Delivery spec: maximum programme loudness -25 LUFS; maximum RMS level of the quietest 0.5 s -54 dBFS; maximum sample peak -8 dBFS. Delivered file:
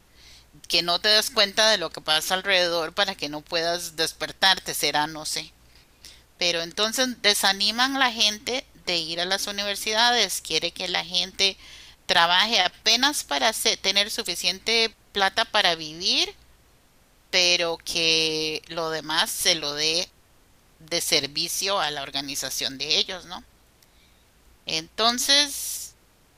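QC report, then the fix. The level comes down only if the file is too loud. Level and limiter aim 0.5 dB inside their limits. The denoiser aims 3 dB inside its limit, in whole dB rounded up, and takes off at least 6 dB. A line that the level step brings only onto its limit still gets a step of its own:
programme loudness -22.0 LUFS: fail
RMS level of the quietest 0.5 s -58 dBFS: pass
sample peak -5.0 dBFS: fail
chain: trim -3.5 dB

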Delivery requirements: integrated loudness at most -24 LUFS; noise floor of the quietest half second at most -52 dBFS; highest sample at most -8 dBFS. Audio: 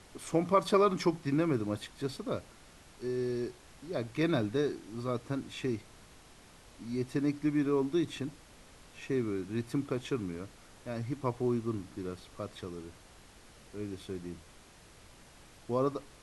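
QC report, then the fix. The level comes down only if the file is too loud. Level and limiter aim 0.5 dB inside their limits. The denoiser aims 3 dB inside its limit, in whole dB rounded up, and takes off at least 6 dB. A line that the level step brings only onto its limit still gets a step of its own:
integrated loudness -34.0 LUFS: pass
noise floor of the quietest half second -56 dBFS: pass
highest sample -13.0 dBFS: pass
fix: none needed

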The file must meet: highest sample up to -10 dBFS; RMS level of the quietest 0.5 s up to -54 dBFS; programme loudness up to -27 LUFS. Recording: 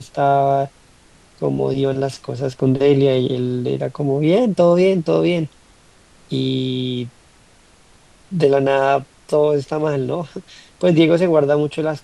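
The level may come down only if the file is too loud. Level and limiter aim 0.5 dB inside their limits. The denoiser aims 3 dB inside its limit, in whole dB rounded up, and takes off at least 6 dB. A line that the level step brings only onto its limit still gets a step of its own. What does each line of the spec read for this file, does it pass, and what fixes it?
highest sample -2.5 dBFS: fail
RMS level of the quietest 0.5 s -50 dBFS: fail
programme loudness -18.0 LUFS: fail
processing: trim -9.5 dB

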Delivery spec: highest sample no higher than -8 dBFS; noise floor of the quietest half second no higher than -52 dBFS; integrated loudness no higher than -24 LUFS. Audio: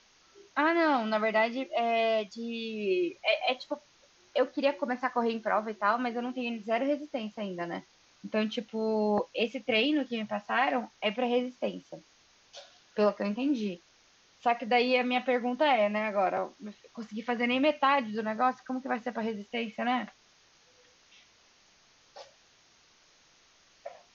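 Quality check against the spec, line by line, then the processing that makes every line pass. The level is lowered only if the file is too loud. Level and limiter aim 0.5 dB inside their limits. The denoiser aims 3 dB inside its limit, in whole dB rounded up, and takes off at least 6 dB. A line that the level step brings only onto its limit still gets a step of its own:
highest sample -13.0 dBFS: pass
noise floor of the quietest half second -63 dBFS: pass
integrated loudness -30.0 LUFS: pass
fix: none needed

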